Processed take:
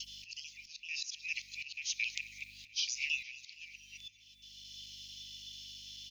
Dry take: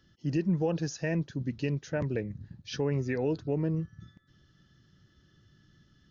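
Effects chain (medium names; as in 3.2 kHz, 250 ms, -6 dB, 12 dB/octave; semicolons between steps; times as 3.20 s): time reversed locally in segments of 221 ms; steep high-pass 2.3 kHz 96 dB/octave; dynamic bell 4.8 kHz, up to +5 dB, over -60 dBFS, Q 1.1; in parallel at -2 dB: compressor with a negative ratio -53 dBFS, ratio -1; on the sum: hum 50 Hz, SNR 33 dB; slow attack 735 ms; feedback delay 232 ms, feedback 60%, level -18 dB; on a send at -11.5 dB: reverberation RT60 1.5 s, pre-delay 4 ms; on the sum: trim +16.5 dB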